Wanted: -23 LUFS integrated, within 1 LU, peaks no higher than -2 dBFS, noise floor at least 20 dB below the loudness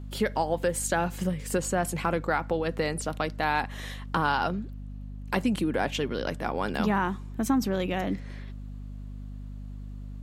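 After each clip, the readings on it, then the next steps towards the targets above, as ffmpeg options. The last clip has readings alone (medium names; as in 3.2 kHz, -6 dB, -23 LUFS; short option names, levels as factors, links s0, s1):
hum 50 Hz; highest harmonic 250 Hz; hum level -36 dBFS; loudness -28.5 LUFS; peak level -11.0 dBFS; loudness target -23.0 LUFS
-> -af "bandreject=f=50:t=h:w=6,bandreject=f=100:t=h:w=6,bandreject=f=150:t=h:w=6,bandreject=f=200:t=h:w=6,bandreject=f=250:t=h:w=6"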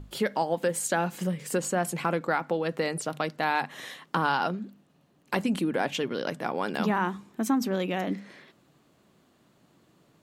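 hum not found; loudness -29.0 LUFS; peak level -11.5 dBFS; loudness target -23.0 LUFS
-> -af "volume=2"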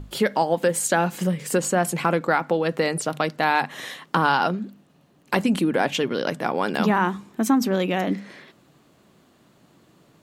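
loudness -23.0 LUFS; peak level -5.5 dBFS; noise floor -58 dBFS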